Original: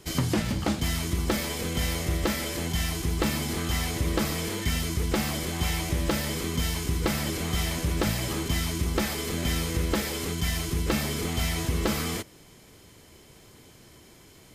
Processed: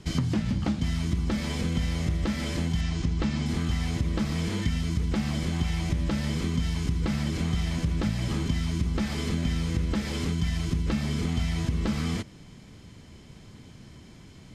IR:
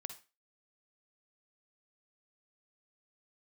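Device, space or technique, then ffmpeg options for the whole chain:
jukebox: -filter_complex "[0:a]lowpass=6200,lowshelf=f=290:t=q:w=1.5:g=7,acompressor=threshold=0.0631:ratio=4,asettb=1/sr,asplit=3[s0][s1][s2];[s0]atrim=end=2.814[s3];[s1]atrim=start=2.81:end=3.46,asetpts=PTS-STARTPTS,afade=t=in:d=0.004:c=qsin,afade=t=out:st=0.646:d=0.004:c=qsin,lowpass=f=7700:w=0.5412,lowpass=f=7700:w=1.3066[s4];[s2]atrim=start=3.456[s5];[s3][s4]acrossfade=d=0.004:c1=hsin:c2=qsin[s6];[s6][s5]acrossfade=d=0.004:c1=qsin:c2=hsin"

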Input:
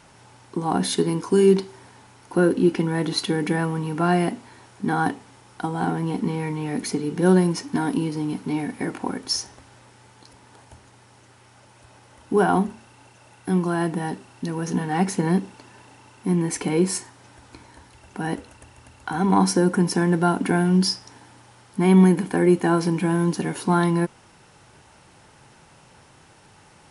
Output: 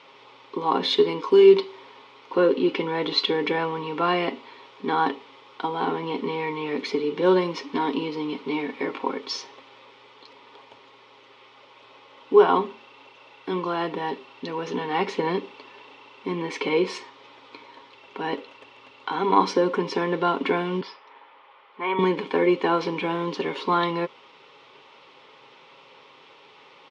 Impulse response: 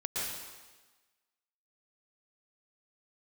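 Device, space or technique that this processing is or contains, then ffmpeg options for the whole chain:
phone earpiece: -filter_complex "[0:a]asettb=1/sr,asplit=3[s0][s1][s2];[s0]atrim=end=20.814[s3];[s1]atrim=start=20.81:end=21.99,asetpts=PTS-STARTPTS,afade=t=in:d=0.004:c=qsin,afade=t=out:st=1.176:d=0.004:c=qsin,acrossover=split=500 2700:gain=0.141 1 0.0631[s4][s5][s6];[s4][s5][s6]amix=inputs=3:normalize=0[s7];[s2]atrim=start=21.986[s8];[s3][s7]acrossfade=d=0.004:c1=hsin:c2=qsin[s9];[s9][s8]acrossfade=d=0.004:c1=qsin:c2=hsin,highpass=430,equalizer=f=460:t=q:w=4:g=7,equalizer=f=720:t=q:w=4:g=-9,equalizer=f=1100:t=q:w=4:g=5,equalizer=f=1600:t=q:w=4:g=-10,equalizer=f=2300:t=q:w=4:g=4,equalizer=f=3400:t=q:w=4:g=6,lowpass=f=4100:w=0.5412,lowpass=f=4100:w=1.3066,aecho=1:1:7.4:0.37,volume=1.41"

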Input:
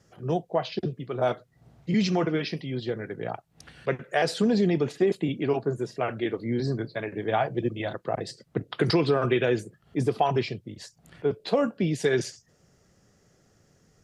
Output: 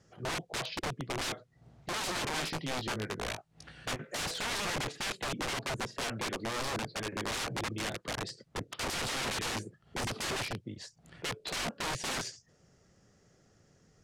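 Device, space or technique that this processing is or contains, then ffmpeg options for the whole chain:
overflowing digital effects unit: -filter_complex "[0:a]aeval=exprs='(mod(21.1*val(0)+1,2)-1)/21.1':c=same,lowpass=8800,asettb=1/sr,asplit=3[s0][s1][s2];[s0]atrim=end=2.364[s3];[s1]atrim=start=2.36:end=4.17,asetpts=PTS-STARTPTS,afade=t=in:d=0.004:c=qsin,afade=t=out:st=1.806:d=0.004:c=qsin,asplit=2[s4][s5];[s5]adelay=19,volume=0.398[s6];[s4][s6]amix=inputs=2:normalize=0,atrim=end_sample=79821[s7];[s2]atrim=start=4.166[s8];[s3][s7]acrossfade=d=0.004:c1=hsin:c2=qsin[s9];[s9][s8]acrossfade=d=0.004:c1=qsin:c2=hsin,volume=0.75"

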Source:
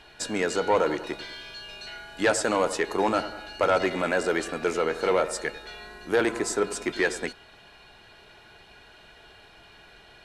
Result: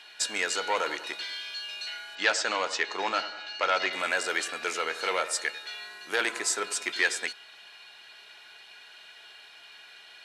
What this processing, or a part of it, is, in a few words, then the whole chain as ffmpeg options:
filter by subtraction: -filter_complex "[0:a]asettb=1/sr,asplit=3[s0][s1][s2];[s0]atrim=end=2.154[s3];[s1]atrim=start=2.15:end=3.93,asetpts=PTS-STARTPTS,afade=t=in:d=0.004:c=qsin,afade=t=out:st=1.776:d=0.004:c=qsin,lowpass=f=6300:w=0.5412,lowpass=f=6300:w=1.3066[s4];[s2]atrim=start=3.926[s5];[s3][s4]acrossfade=d=0.004:c1=hsin:c2=qsin[s6];[s6][s5]acrossfade=d=0.004:c1=qsin:c2=hsin,asplit=2[s7][s8];[s8]lowpass=2900,volume=-1[s9];[s7][s9]amix=inputs=2:normalize=0,volume=1.41"

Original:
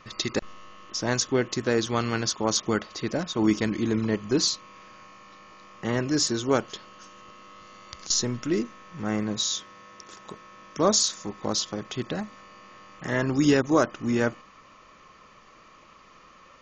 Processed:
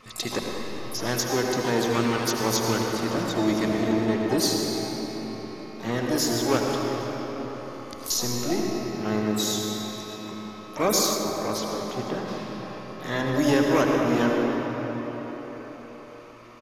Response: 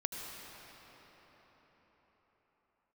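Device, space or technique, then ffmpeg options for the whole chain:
shimmer-style reverb: -filter_complex "[0:a]bandreject=f=50:t=h:w=6,bandreject=f=100:t=h:w=6,bandreject=f=150:t=h:w=6,bandreject=f=200:t=h:w=6,bandreject=f=250:t=h:w=6,asplit=2[s0][s1];[s1]adelay=112,lowpass=f=800:p=1,volume=0.251,asplit=2[s2][s3];[s3]adelay=112,lowpass=f=800:p=1,volume=0.44,asplit=2[s4][s5];[s5]adelay=112,lowpass=f=800:p=1,volume=0.44,asplit=2[s6][s7];[s7]adelay=112,lowpass=f=800:p=1,volume=0.44[s8];[s0][s2][s4][s6][s8]amix=inputs=5:normalize=0,asplit=2[s9][s10];[s10]asetrate=88200,aresample=44100,atempo=0.5,volume=0.398[s11];[s9][s11]amix=inputs=2:normalize=0[s12];[1:a]atrim=start_sample=2205[s13];[s12][s13]afir=irnorm=-1:irlink=0,asplit=3[s14][s15][s16];[s14]afade=t=out:st=11.14:d=0.02[s17];[s15]adynamicequalizer=threshold=0.00631:dfrequency=2500:dqfactor=0.7:tfrequency=2500:tqfactor=0.7:attack=5:release=100:ratio=0.375:range=3.5:mode=cutabove:tftype=highshelf,afade=t=in:st=11.14:d=0.02,afade=t=out:st=12.27:d=0.02[s18];[s16]afade=t=in:st=12.27:d=0.02[s19];[s17][s18][s19]amix=inputs=3:normalize=0,volume=0.891"

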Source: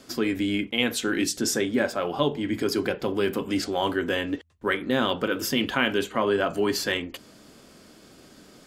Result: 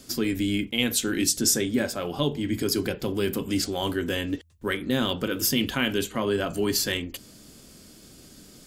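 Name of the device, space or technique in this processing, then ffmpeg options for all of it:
smiley-face EQ: -af "lowshelf=f=120:g=8,equalizer=f=990:t=o:w=2.8:g=-7,highshelf=f=5700:g=9,volume=1.12"

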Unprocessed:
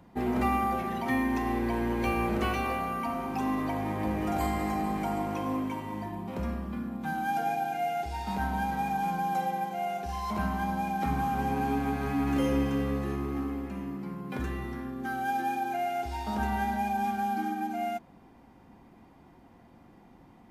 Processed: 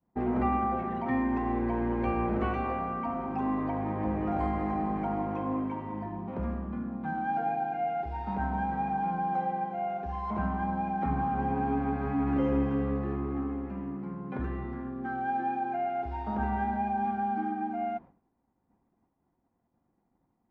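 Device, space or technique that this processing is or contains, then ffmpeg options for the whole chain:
hearing-loss simulation: -af "lowpass=1500,agate=range=0.0224:threshold=0.00794:ratio=3:detection=peak"

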